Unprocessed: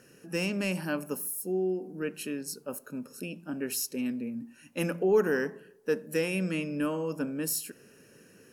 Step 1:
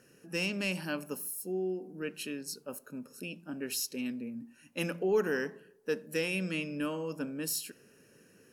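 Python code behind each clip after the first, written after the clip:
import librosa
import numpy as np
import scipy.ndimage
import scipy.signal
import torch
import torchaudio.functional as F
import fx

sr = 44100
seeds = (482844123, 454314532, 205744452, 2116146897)

y = fx.dynamic_eq(x, sr, hz=3700.0, q=0.97, threshold_db=-52.0, ratio=4.0, max_db=8)
y = y * 10.0 ** (-4.5 / 20.0)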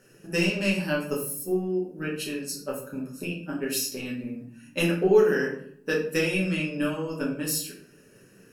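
y = fx.transient(x, sr, attack_db=7, sustain_db=-1)
y = fx.room_shoebox(y, sr, seeds[0], volume_m3=63.0, walls='mixed', distance_m=1.1)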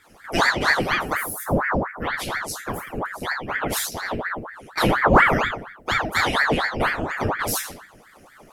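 y = fx.octave_divider(x, sr, octaves=2, level_db=3.0)
y = fx.ring_lfo(y, sr, carrier_hz=1000.0, swing_pct=85, hz=4.2)
y = y * 10.0 ** (5.0 / 20.0)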